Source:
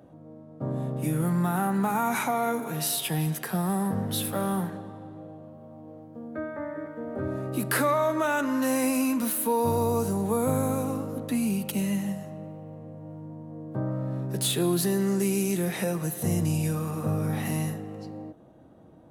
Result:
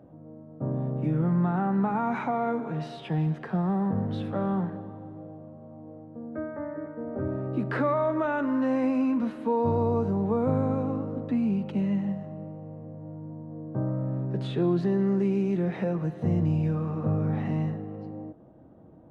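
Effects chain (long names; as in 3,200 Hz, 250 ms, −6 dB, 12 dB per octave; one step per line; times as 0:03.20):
head-to-tape spacing loss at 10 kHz 44 dB
level +2 dB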